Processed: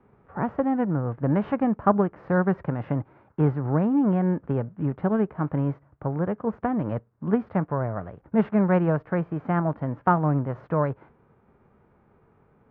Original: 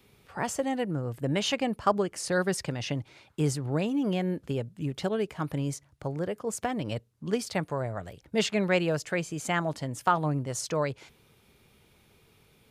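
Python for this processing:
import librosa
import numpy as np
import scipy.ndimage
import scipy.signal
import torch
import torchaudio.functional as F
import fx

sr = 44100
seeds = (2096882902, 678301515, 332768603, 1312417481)

y = fx.envelope_flatten(x, sr, power=0.6)
y = scipy.signal.sosfilt(scipy.signal.butter(4, 1400.0, 'lowpass', fs=sr, output='sos'), y)
y = fx.peak_eq(y, sr, hz=220.0, db=3.5, octaves=1.2)
y = y * 10.0 ** (4.0 / 20.0)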